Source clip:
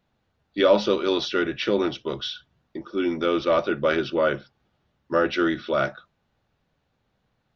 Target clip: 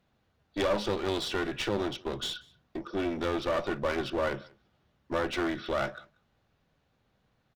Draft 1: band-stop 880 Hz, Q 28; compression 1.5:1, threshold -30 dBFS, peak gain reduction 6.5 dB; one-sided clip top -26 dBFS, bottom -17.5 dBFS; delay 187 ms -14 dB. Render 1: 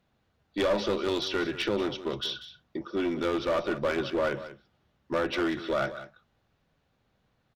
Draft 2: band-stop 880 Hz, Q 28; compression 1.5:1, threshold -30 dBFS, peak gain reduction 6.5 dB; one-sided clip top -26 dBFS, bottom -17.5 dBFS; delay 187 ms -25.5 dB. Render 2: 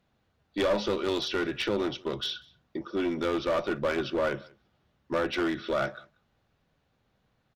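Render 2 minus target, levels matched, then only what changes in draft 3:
one-sided clip: distortion -5 dB
change: one-sided clip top -35.5 dBFS, bottom -17.5 dBFS

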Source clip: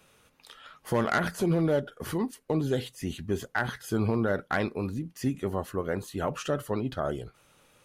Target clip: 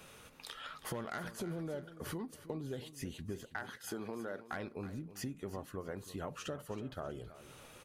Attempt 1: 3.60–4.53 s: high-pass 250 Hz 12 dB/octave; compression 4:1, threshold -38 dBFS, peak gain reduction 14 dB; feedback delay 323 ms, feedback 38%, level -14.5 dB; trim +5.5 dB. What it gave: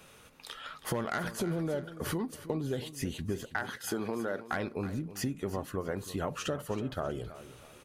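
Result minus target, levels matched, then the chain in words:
compression: peak gain reduction -8 dB
3.60–4.53 s: high-pass 250 Hz 12 dB/octave; compression 4:1, threshold -48.5 dBFS, peak gain reduction 22 dB; feedback delay 323 ms, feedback 38%, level -14.5 dB; trim +5.5 dB

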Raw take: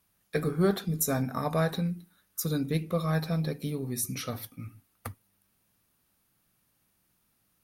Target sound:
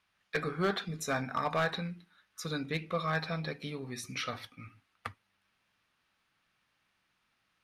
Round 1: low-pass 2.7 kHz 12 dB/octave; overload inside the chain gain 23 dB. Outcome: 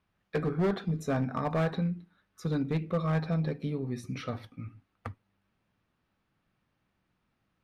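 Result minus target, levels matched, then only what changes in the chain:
1 kHz band -5.0 dB
add after low-pass: tilt shelf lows -9.5 dB, about 830 Hz

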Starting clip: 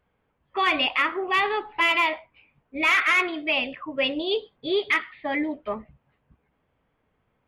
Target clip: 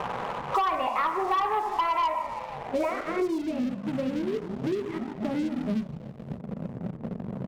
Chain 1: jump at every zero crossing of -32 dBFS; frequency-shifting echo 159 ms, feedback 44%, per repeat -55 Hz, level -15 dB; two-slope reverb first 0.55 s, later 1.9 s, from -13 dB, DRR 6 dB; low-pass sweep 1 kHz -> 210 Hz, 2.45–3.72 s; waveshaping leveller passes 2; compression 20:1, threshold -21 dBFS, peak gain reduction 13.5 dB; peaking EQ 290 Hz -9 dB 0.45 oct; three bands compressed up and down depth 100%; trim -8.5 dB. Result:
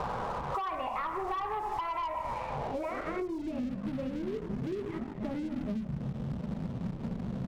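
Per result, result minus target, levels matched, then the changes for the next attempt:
compression: peak gain reduction +13.5 dB; jump at every zero crossing: distortion +10 dB
remove: compression 20:1, threshold -21 dBFS, peak gain reduction 13.5 dB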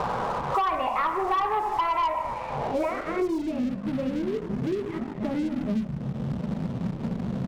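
jump at every zero crossing: distortion +10 dB
change: jump at every zero crossing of -43 dBFS

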